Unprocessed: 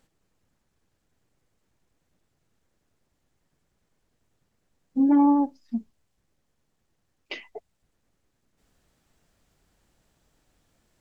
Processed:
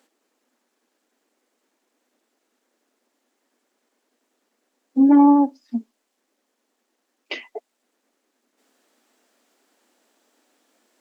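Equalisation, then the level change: elliptic high-pass 240 Hz, stop band 40 dB; +6.5 dB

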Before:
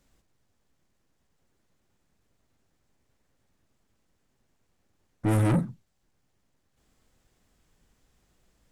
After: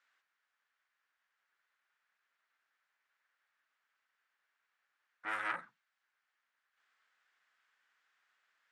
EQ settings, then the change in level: ladder band-pass 1800 Hz, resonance 45%; +10.0 dB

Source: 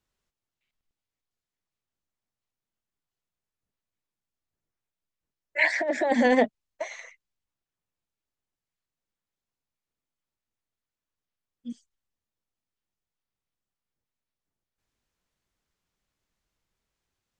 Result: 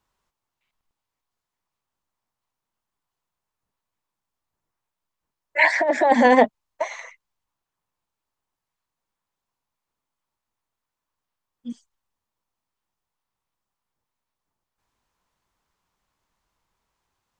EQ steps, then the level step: bell 980 Hz +10.5 dB 0.84 oct; +3.5 dB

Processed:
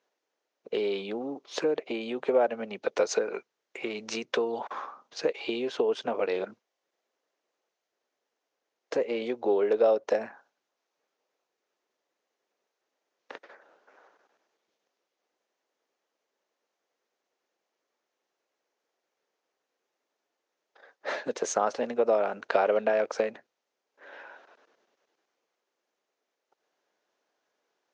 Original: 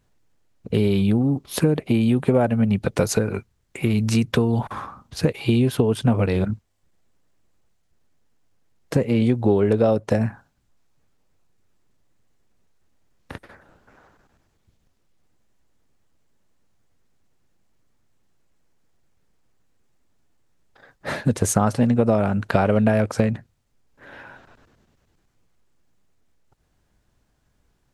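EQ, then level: ladder high-pass 360 Hz, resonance 30%; elliptic low-pass 6400 Hz, stop band 70 dB; +2.0 dB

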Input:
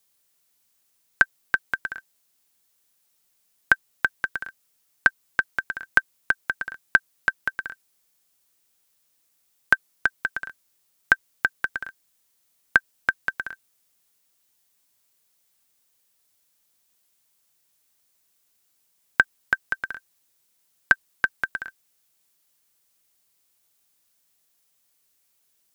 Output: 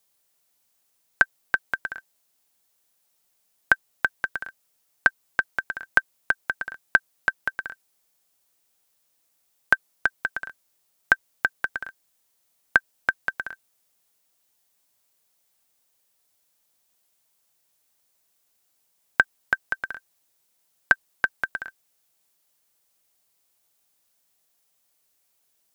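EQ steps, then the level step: bell 680 Hz +5 dB 1.1 oct; -1.5 dB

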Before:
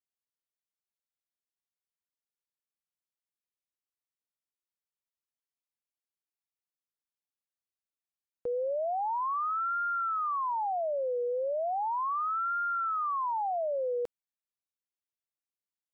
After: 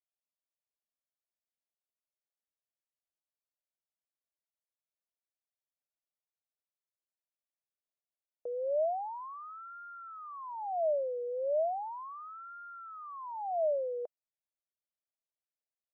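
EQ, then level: band-pass 620 Hz, Q 5.1; +3.0 dB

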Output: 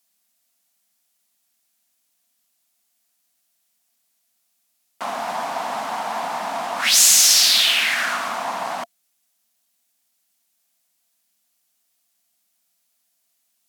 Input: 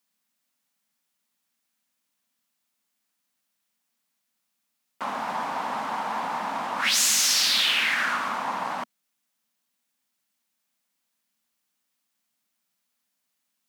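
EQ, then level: bell 690 Hz +11 dB 0.22 oct; bell 12000 Hz +10.5 dB 2.7 oct; 0.0 dB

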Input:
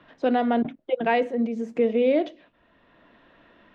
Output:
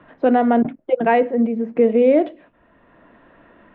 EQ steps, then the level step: LPF 2100 Hz 12 dB/oct; air absorption 130 m; +7.0 dB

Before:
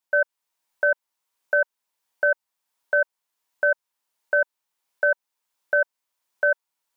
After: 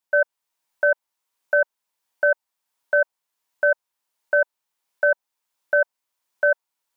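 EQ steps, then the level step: dynamic EQ 740 Hz, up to +5 dB, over -33 dBFS, Q 1.5; 0.0 dB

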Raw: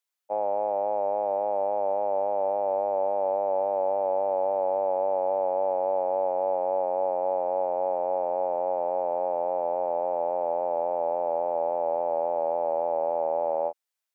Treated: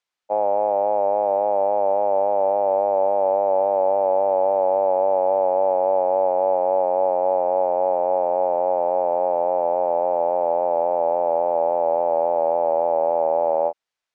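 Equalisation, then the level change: air absorption 100 m; +7.0 dB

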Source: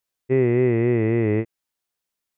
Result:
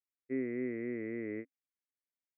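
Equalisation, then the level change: vowel filter i; air absorption 480 m; band shelf 960 Hz +15.5 dB 2.4 oct; -7.0 dB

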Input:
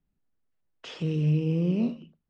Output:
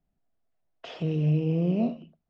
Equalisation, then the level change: air absorption 110 m; bell 680 Hz +13.5 dB 0.38 oct; 0.0 dB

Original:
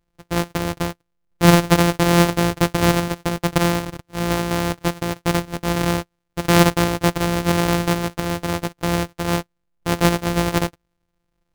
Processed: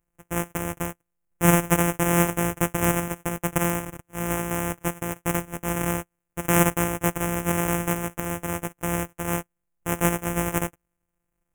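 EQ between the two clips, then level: Butterworth band-stop 4300 Hz, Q 1; high shelf 3500 Hz +10 dB; -6.5 dB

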